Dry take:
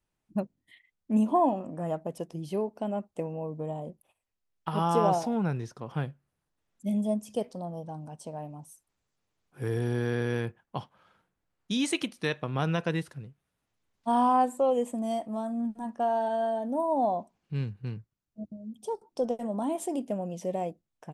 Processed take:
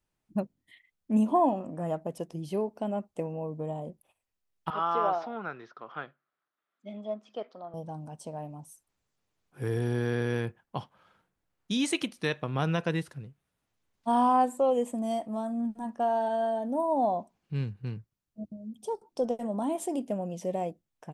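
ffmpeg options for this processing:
-filter_complex "[0:a]asettb=1/sr,asplit=3[a][b][c];[a]atrim=end=4.704[d];[b]atrim=start=4.7:end=7.74,asetpts=PTS-STARTPTS,afade=t=in:d=0.004:c=qsin,afade=t=out:st=3.036:d=0.004:c=qsin,highpass=480,equalizer=f=500:t=q:w=4:g=-5,equalizer=f=880:t=q:w=4:g=-5,equalizer=f=1.3k:t=q:w=4:g=9,equalizer=f=2.7k:t=q:w=4:g=-5,lowpass=f=3.7k:w=0.5412,lowpass=f=3.7k:w=1.3066[e];[c]atrim=start=7.736[f];[d][e]acrossfade=d=0.004:c1=hsin:c2=qsin[g];[g][f]acrossfade=d=0.004:c1=qsin:c2=hsin"

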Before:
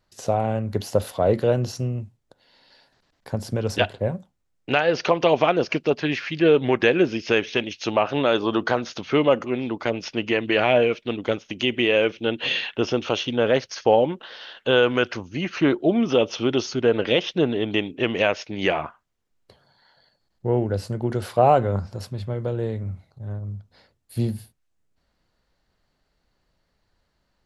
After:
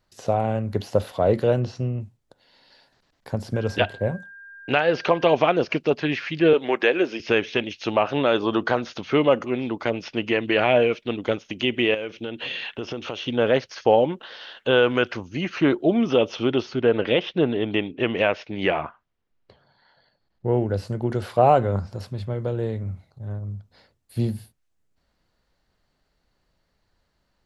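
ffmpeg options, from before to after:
-filter_complex "[0:a]asettb=1/sr,asplit=3[a][b][c];[a]atrim=end=1.604[d];[b]atrim=start=1.6:end=2.01,asetpts=PTS-STARTPTS,afade=t=in:d=0.004:c=qsin,afade=t=out:st=0.406:d=0.004:c=qsin,lowpass=4.2k[e];[c]atrim=start=2.006[f];[d][e]acrossfade=d=0.004:c1=hsin:c2=qsin[g];[g][f]acrossfade=d=0.004:c1=qsin:c2=hsin,asettb=1/sr,asplit=3[h][i][j];[h]atrim=end=3.544[k];[i]atrim=start=3.54:end=5.35,asetpts=PTS-STARTPTS,afade=t=in:d=0.004:c=qsin,afade=t=out:st=1.806:d=0.004:c=qsin,aeval=exprs='val(0)+0.00891*sin(2*PI*1600*n/s)':c=same[l];[j]atrim=start=5.346[m];[k][l]acrossfade=d=0.004:c1=hsin:c2=qsin[n];[n][m]acrossfade=d=0.004:c1=qsin:c2=hsin,asettb=1/sr,asplit=3[o][p][q];[o]atrim=end=6.534[r];[p]atrim=start=6.53:end=7.2,asetpts=PTS-STARTPTS,afade=t=in:d=0.004:c=qsin,afade=t=out:st=0.666:d=0.004:c=qsin,highpass=360[s];[q]atrim=start=7.196[t];[r][s]acrossfade=d=0.004:c1=hsin:c2=qsin[u];[u][t]acrossfade=d=0.004:c1=qsin:c2=hsin,asettb=1/sr,asplit=3[v][w][x];[v]atrim=end=11.944[y];[w]atrim=start=11.94:end=13.23,asetpts=PTS-STARTPTS,afade=t=in:d=0.004:c=qsin,afade=t=out:st=1.286:d=0.004:c=qsin,acompressor=threshold=-27dB:ratio=4:attack=3.2:release=140:knee=1:detection=peak[z];[x]atrim=start=13.226[aa];[y][z]acrossfade=d=0.004:c1=hsin:c2=qsin[ab];[ab][aa]acrossfade=d=0.004:c1=qsin:c2=hsin,asettb=1/sr,asplit=3[ac][ad][ae];[ac]atrim=end=16.524[af];[ad]atrim=start=16.52:end=20.48,asetpts=PTS-STARTPTS,afade=t=in:d=0.004:c=qsin,afade=t=out:st=3.956:d=0.004:c=qsin,lowpass=3.8k[ag];[ae]atrim=start=20.476[ah];[af][ag]acrossfade=d=0.004:c1=hsin:c2=qsin[ai];[ai][ah]acrossfade=d=0.004:c1=qsin:c2=hsin,acrossover=split=4400[aj][ak];[ak]acompressor=threshold=-48dB:ratio=4:attack=1:release=60[al];[aj][al]amix=inputs=2:normalize=0"

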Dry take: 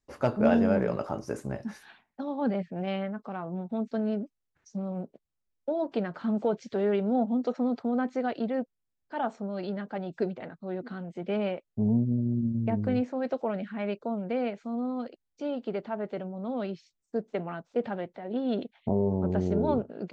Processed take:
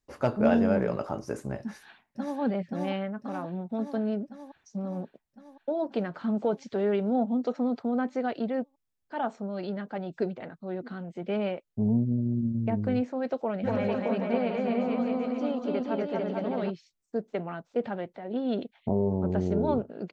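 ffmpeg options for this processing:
-filter_complex "[0:a]asplit=2[a][b];[b]afade=t=in:st=1.62:d=0.01,afade=t=out:st=2.39:d=0.01,aecho=0:1:530|1060|1590|2120|2650|3180|3710|4240|4770|5300|5830|6360:0.749894|0.524926|0.367448|0.257214|0.18005|0.126035|0.0882243|0.061757|0.0432299|0.0302609|0.0211827|0.0148279[c];[a][c]amix=inputs=2:normalize=0,asplit=3[d][e][f];[d]afade=t=out:st=13.63:d=0.02[g];[e]aecho=1:1:240|444|617.4|764.8|890.1|996.6:0.794|0.631|0.501|0.398|0.316|0.251,afade=t=in:st=13.63:d=0.02,afade=t=out:st=16.69:d=0.02[h];[f]afade=t=in:st=16.69:d=0.02[i];[g][h][i]amix=inputs=3:normalize=0"

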